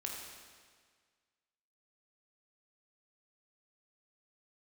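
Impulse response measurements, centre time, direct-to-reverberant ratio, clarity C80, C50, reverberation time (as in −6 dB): 78 ms, −1.5 dB, 3.0 dB, 1.5 dB, 1.7 s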